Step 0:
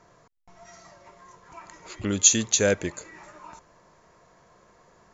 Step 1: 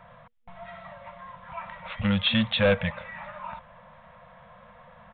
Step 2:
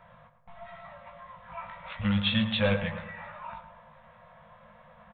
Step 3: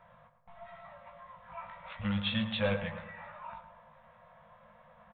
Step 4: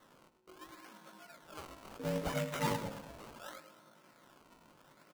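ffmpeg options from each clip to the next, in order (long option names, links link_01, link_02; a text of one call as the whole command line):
ffmpeg -i in.wav -af "afftfilt=real='re*(1-between(b*sr/4096,230,480))':imag='im*(1-between(b*sr/4096,230,480))':win_size=4096:overlap=0.75,aresample=8000,asoftclip=type=tanh:threshold=-24dB,aresample=44100,volume=7.5dB" out.wav
ffmpeg -i in.wav -filter_complex "[0:a]asplit=2[link_01][link_02];[link_02]adelay=19,volume=-5dB[link_03];[link_01][link_03]amix=inputs=2:normalize=0,asplit=2[link_04][link_05];[link_05]adelay=109,lowpass=frequency=2000:poles=1,volume=-9dB,asplit=2[link_06][link_07];[link_07]adelay=109,lowpass=frequency=2000:poles=1,volume=0.51,asplit=2[link_08][link_09];[link_09]adelay=109,lowpass=frequency=2000:poles=1,volume=0.51,asplit=2[link_10][link_11];[link_11]adelay=109,lowpass=frequency=2000:poles=1,volume=0.51,asplit=2[link_12][link_13];[link_13]adelay=109,lowpass=frequency=2000:poles=1,volume=0.51,asplit=2[link_14][link_15];[link_15]adelay=109,lowpass=frequency=2000:poles=1,volume=0.51[link_16];[link_06][link_08][link_10][link_12][link_14][link_16]amix=inputs=6:normalize=0[link_17];[link_04][link_17]amix=inputs=2:normalize=0,volume=-5dB" out.wav
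ffmpeg -i in.wav -af "equalizer=frequency=760:width_type=o:width=2.3:gain=3,volume=-6.5dB" out.wav
ffmpeg -i in.wav -af "acrusher=samples=18:mix=1:aa=0.000001:lfo=1:lforange=18:lforate=0.71,aeval=exprs='val(0)*sin(2*PI*370*n/s)':channel_layout=same,volume=-1dB" out.wav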